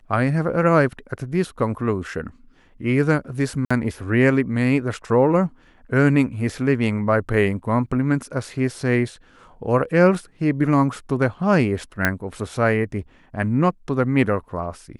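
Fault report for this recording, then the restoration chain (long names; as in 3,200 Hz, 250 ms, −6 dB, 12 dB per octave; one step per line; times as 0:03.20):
0:03.65–0:03.71: drop-out 55 ms
0:12.05: click −4 dBFS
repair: click removal
repair the gap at 0:03.65, 55 ms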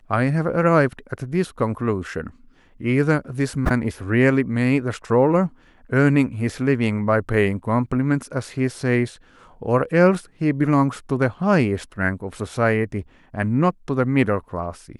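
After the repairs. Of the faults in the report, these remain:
none of them is left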